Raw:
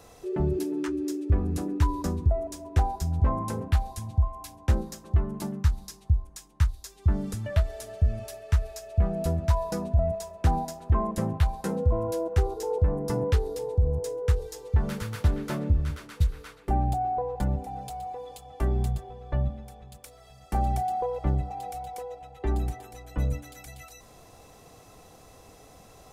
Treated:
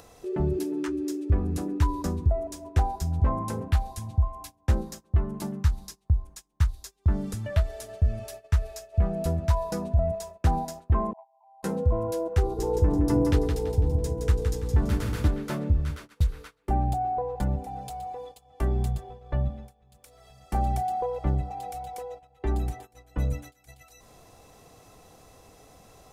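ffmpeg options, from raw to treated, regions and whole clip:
-filter_complex "[0:a]asettb=1/sr,asplit=3[s0][s1][s2];[s0]atrim=end=11.134[s3];[s1]atrim=start=11.13:end=11.63,asetpts=PTS-STARTPTS,afade=t=in:d=0.004:c=qsin,afade=t=out:st=0.496:d=0.004:c=qsin,asuperpass=centerf=810:order=20:qfactor=2.3,acompressor=threshold=0.00631:ratio=4:attack=3.2:release=140:knee=1:detection=peak[s4];[s2]atrim=start=11.626[s5];[s3][s4]acrossfade=d=0.004:c1=hsin:c2=qsin[s6];[s6][s5]acrossfade=d=0.004:c1=qsin:c2=hsin,asettb=1/sr,asplit=3[s7][s8][s9];[s7]atrim=end=12.424[s10];[s8]atrim=start=12.42:end=15.28,asetpts=PTS-STARTPTS,afade=t=in:d=0.004:c=qsin,afade=t=out:st=2.856:d=0.004:c=qsin,equalizer=f=300:t=o:w=0.3:g=12.5,aeval=exprs='val(0)+0.0141*(sin(2*PI*60*n/s)+sin(2*PI*2*60*n/s)/2+sin(2*PI*3*60*n/s)/3+sin(2*PI*4*60*n/s)/4+sin(2*PI*5*60*n/s)/5)':c=same,aecho=1:1:167|334|501|668:0.531|0.196|0.0727|0.0269,atrim=end_sample=126126[s11];[s9]atrim=start=15.276[s12];[s10][s11]acrossfade=d=0.004:c1=hsin:c2=qsin[s13];[s13][s12]acrossfade=d=0.004:c1=qsin:c2=hsin,agate=range=0.112:threshold=0.00891:ratio=16:detection=peak,acompressor=mode=upward:threshold=0.0141:ratio=2.5"

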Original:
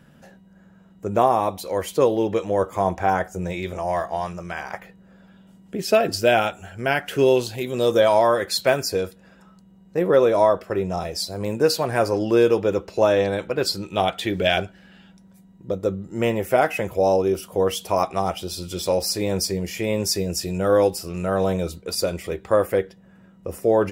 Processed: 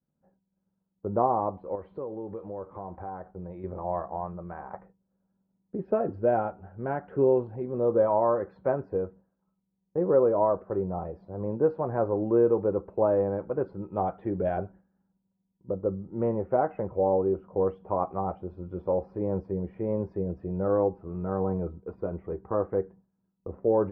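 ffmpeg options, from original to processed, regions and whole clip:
-filter_complex "[0:a]asettb=1/sr,asplit=3[s0][s1][s2];[s0]atrim=end=1.754[s3];[s1]atrim=start=1.75:end=3.64,asetpts=PTS-STARTPTS,afade=t=in:d=0.004:c=qsin,afade=t=out:st=1.886:d=0.004:c=qsin,acompressor=threshold=0.0224:ratio=2.5:attack=3.2:release=140:knee=1:detection=peak,lowpass=f=4100:t=q:w=5.4,aeval=exprs='val(0)*gte(abs(val(0)),0.00355)':c=same[s4];[s2]atrim=start=3.636[s5];[s3][s4]acrossfade=d=0.004:c1=hsin:c2=qsin[s6];[s6][s5]acrossfade=d=0.004:c1=qsin:c2=hsin,asettb=1/sr,asplit=3[s7][s8][s9];[s7]atrim=end=20.684[s10];[s8]atrim=start=20.68:end=23.53,asetpts=PTS-STARTPTS,afade=t=in:d=0.004:c=qsin,afade=t=out:st=2.846:d=0.004:c=qsin,lowpass=4000,bandreject=f=550:w=6.8[s11];[s9]atrim=start=23.526[s12];[s10][s11]acrossfade=d=0.004:c1=hsin:c2=qsin[s13];[s13][s12]acrossfade=d=0.004:c1=qsin:c2=hsin,agate=range=0.0224:threshold=0.0141:ratio=3:detection=peak,lowpass=f=1100:w=0.5412,lowpass=f=1100:w=1.3066,bandreject=f=670:w=12,volume=0.562"

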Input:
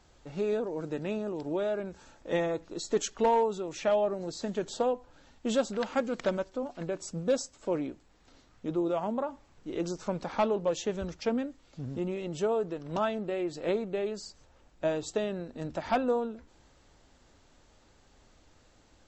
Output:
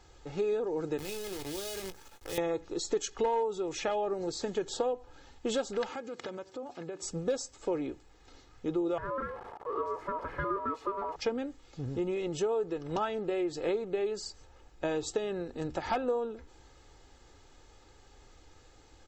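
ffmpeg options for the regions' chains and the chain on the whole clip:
-filter_complex "[0:a]asettb=1/sr,asplit=3[s0][s1][s2];[s0]atrim=end=0.984[s3];[s1]atrim=start=0.98:end=2.38,asetpts=PTS-STARTPTS,afade=t=in:d=0.004:c=qsin,afade=t=out:st=1.396:d=0.004:c=qsin,acrusher=bits=7:dc=4:mix=0:aa=0.000001,acrossover=split=130|3000[s4][s5][s6];[s5]acompressor=threshold=0.00891:ratio=6:attack=3.2:release=140:knee=2.83:detection=peak[s7];[s4][s7][s6]amix=inputs=3:normalize=0,asplit=2[s8][s9];[s9]adelay=21,volume=0.299[s10];[s8][s10]amix=inputs=2:normalize=0,atrim=end_sample=61740[s11];[s2]atrim=start=2.376[s12];[s3][s11]acrossfade=d=0.004:c1=hsin:c2=qsin[s13];[s13][s12]acrossfade=d=0.004:c1=qsin:c2=hsin,asettb=1/sr,asplit=3[s14][s15][s16];[s14]atrim=end=5.904[s17];[s15]atrim=start=5.9:end=7.03,asetpts=PTS-STARTPTS,afade=t=in:d=0.004:c=qsin,afade=t=out:st=1.126:d=0.004:c=qsin,acompressor=threshold=0.01:ratio=4:attack=3.2:release=140:knee=1:detection=peak,highpass=f=84:w=0.5412,highpass=f=84:w=1.3066[s18];[s16]atrim=start=7.026[s19];[s17][s18]acrossfade=d=0.004:c1=hsin:c2=qsin[s20];[s20][s19]acrossfade=d=0.004:c1=qsin:c2=hsin,asettb=1/sr,asplit=3[s21][s22][s23];[s21]atrim=end=8.984[s24];[s22]atrim=start=8.98:end=11.16,asetpts=PTS-STARTPTS,afade=t=in:d=0.004:c=qsin,afade=t=out:st=2.176:d=0.004:c=qsin,aeval=exprs='val(0)+0.5*0.0224*sgn(val(0))':c=same,bandpass=f=180:t=q:w=0.64,aeval=exprs='val(0)*sin(2*PI*790*n/s)':c=same[s25];[s23]atrim=start=11.156[s26];[s24][s25]acrossfade=d=0.004:c1=hsin:c2=qsin[s27];[s27][s26]acrossfade=d=0.004:c1=qsin:c2=hsin,aecho=1:1:2.4:0.5,acompressor=threshold=0.0282:ratio=3,volume=1.26"

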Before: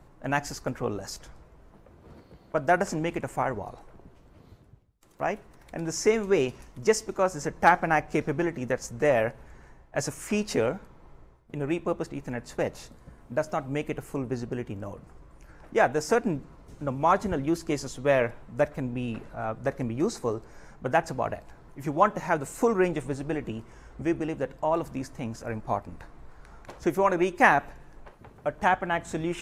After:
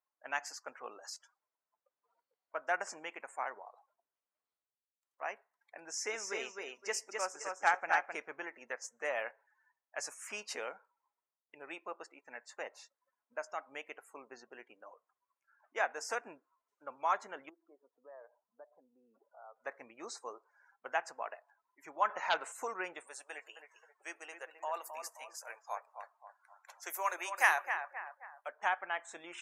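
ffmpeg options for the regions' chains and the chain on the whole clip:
-filter_complex "[0:a]asettb=1/sr,asplit=3[s0][s1][s2];[s0]atrim=end=5.834[s3];[s1]atrim=start=5.83:end=8.15,asetpts=PTS-STARTPTS,afade=t=in:d=0.004:c=qsin,afade=t=out:st=2.316:d=0.004:c=qsin,equalizer=f=1100:t=o:w=0.27:g=-3.5,aecho=1:1:260|520|780:0.631|0.158|0.0394,atrim=end_sample=102312[s4];[s2]atrim=start=8.146[s5];[s3][s4]acrossfade=d=0.004:c1=hsin:c2=qsin[s6];[s6][s5]acrossfade=d=0.004:c1=qsin:c2=hsin,asettb=1/sr,asplit=3[s7][s8][s9];[s7]atrim=end=17.494[s10];[s8]atrim=start=17.49:end=19.56,asetpts=PTS-STARTPTS,afade=t=in:d=0.004:c=qsin,afade=t=out:st=2.066:d=0.004:c=qsin,lowpass=1100,aemphasis=mode=reproduction:type=75kf,acompressor=threshold=0.0141:ratio=4:attack=3.2:release=140:knee=1:detection=peak[s11];[s9]atrim=start=19.556[s12];[s10][s11]acrossfade=d=0.004:c1=hsin:c2=qsin[s13];[s13][s12]acrossfade=d=0.004:c1=qsin:c2=hsin,asettb=1/sr,asplit=3[s14][s15][s16];[s14]atrim=end=22.094[s17];[s15]atrim=start=22.09:end=22.52,asetpts=PTS-STARTPTS,afade=t=in:d=0.004:c=qsin,afade=t=out:st=0.426:d=0.004:c=qsin,lowpass=f=2200:p=1,lowshelf=f=420:g=-9.5,aeval=exprs='0.237*sin(PI/2*2.24*val(0)/0.237)':c=same[s18];[s16]atrim=start=22.516[s19];[s17][s18]acrossfade=d=0.004:c1=hsin:c2=qsin[s20];[s20][s19]acrossfade=d=0.004:c1=qsin:c2=hsin,asettb=1/sr,asplit=3[s21][s22][s23];[s21]atrim=end=23.074[s24];[s22]atrim=start=23.07:end=28.49,asetpts=PTS-STARTPTS,afade=t=in:d=0.004:c=qsin,afade=t=out:st=5.416:d=0.004:c=qsin,highpass=410,aemphasis=mode=production:type=bsi,asplit=2[s25][s26];[s26]adelay=264,lowpass=f=2400:p=1,volume=0.422,asplit=2[s27][s28];[s28]adelay=264,lowpass=f=2400:p=1,volume=0.47,asplit=2[s29][s30];[s30]adelay=264,lowpass=f=2400:p=1,volume=0.47,asplit=2[s31][s32];[s32]adelay=264,lowpass=f=2400:p=1,volume=0.47,asplit=2[s33][s34];[s34]adelay=264,lowpass=f=2400:p=1,volume=0.47[s35];[s25][s27][s29][s31][s33][s35]amix=inputs=6:normalize=0,atrim=end_sample=239022[s36];[s23]atrim=start=28.486[s37];[s24][s36]acrossfade=d=0.004:c1=hsin:c2=qsin[s38];[s38][s37]acrossfade=d=0.004:c1=qsin:c2=hsin,highpass=920,afftdn=nr=25:nf=-50,volume=0.473"

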